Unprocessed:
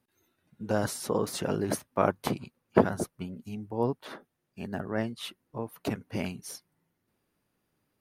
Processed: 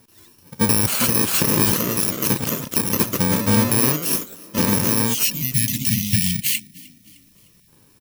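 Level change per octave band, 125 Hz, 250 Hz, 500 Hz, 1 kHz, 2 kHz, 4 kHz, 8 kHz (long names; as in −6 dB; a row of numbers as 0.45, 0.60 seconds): +13.0, +10.5, +3.0, +6.0, +12.5, +18.0, +21.0 decibels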